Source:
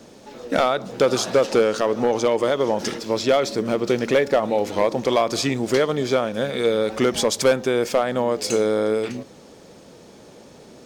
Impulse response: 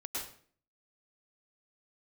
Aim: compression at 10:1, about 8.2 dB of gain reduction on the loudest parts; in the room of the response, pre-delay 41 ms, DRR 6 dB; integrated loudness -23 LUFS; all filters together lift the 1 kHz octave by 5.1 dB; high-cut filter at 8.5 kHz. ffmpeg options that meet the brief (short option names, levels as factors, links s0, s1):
-filter_complex "[0:a]lowpass=8500,equalizer=f=1000:t=o:g=7,acompressor=threshold=0.112:ratio=10,asplit=2[s0][s1];[1:a]atrim=start_sample=2205,adelay=41[s2];[s1][s2]afir=irnorm=-1:irlink=0,volume=0.422[s3];[s0][s3]amix=inputs=2:normalize=0,volume=1.12"